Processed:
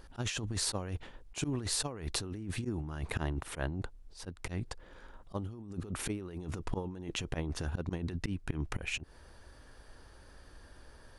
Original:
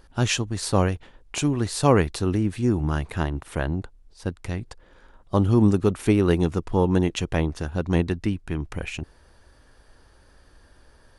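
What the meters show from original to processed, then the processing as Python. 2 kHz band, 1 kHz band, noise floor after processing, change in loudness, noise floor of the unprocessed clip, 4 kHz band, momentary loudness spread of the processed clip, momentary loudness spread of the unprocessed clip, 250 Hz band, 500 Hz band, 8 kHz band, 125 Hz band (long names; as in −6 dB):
−9.5 dB, −15.5 dB, −56 dBFS, −13.5 dB, −56 dBFS, −6.0 dB, 23 LU, 14 LU, −16.5 dB, −18.0 dB, −5.0 dB, −14.0 dB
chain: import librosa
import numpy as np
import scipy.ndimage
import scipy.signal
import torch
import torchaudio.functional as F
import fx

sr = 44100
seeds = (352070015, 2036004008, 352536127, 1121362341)

y = fx.auto_swell(x, sr, attack_ms=170.0)
y = fx.over_compress(y, sr, threshold_db=-31.0, ratio=-1.0)
y = y * librosa.db_to_amplitude(-6.0)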